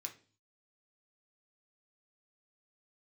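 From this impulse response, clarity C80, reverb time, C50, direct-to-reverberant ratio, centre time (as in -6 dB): 19.0 dB, 0.40 s, 13.0 dB, 2.5 dB, 11 ms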